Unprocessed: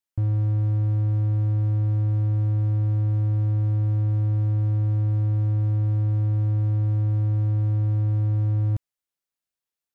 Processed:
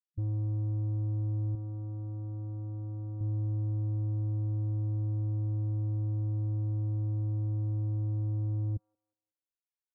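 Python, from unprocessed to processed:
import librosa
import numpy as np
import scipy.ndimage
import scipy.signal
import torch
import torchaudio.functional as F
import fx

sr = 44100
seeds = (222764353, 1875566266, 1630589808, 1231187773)

p1 = scipy.signal.sosfilt(scipy.signal.cheby1(2, 1.0, [110.0, 670.0], 'bandstop', fs=sr, output='sos'), x)
p2 = fx.spec_topn(p1, sr, count=8)
p3 = 10.0 ** (-26.0 / 20.0) * np.tanh(p2 / 10.0 ** (-26.0 / 20.0))
p4 = fx.tilt_eq(p3, sr, slope=2.0, at=(1.55, 3.21))
p5 = p4 + fx.echo_wet_highpass(p4, sr, ms=183, feedback_pct=31, hz=1400.0, wet_db=-12.0, dry=0)
y = F.gain(torch.from_numpy(p5), -3.0).numpy()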